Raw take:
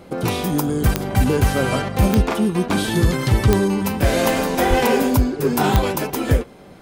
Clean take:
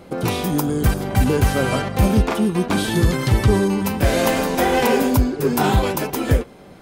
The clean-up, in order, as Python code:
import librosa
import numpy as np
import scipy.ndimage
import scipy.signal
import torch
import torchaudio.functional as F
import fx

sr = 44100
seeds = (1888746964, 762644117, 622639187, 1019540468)

y = fx.fix_declick_ar(x, sr, threshold=10.0)
y = fx.fix_deplosive(y, sr, at_s=(4.69,))